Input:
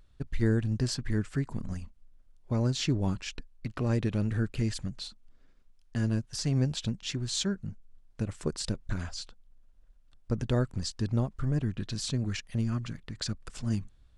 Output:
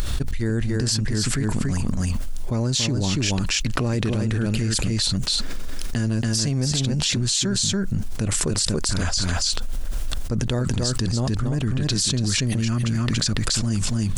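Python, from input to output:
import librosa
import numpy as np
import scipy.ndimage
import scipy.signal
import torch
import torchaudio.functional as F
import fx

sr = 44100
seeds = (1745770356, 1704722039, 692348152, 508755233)

y = fx.high_shelf(x, sr, hz=4600.0, db=11.0)
y = y + 10.0 ** (-5.5 / 20.0) * np.pad(y, (int(283 * sr / 1000.0), 0))[:len(y)]
y = fx.env_flatten(y, sr, amount_pct=100)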